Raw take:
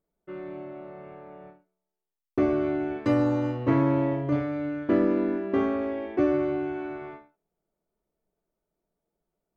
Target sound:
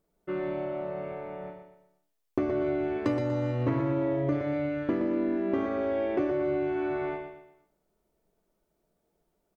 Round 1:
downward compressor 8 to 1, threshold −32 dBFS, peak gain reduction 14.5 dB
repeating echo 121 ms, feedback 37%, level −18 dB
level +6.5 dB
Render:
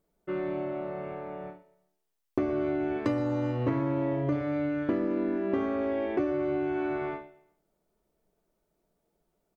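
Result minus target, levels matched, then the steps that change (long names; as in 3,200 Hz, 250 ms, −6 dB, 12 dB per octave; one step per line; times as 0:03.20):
echo-to-direct −11 dB
change: repeating echo 121 ms, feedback 37%, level −7 dB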